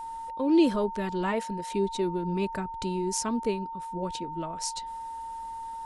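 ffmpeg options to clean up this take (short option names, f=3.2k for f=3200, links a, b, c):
-af "bandreject=f=910:w=30"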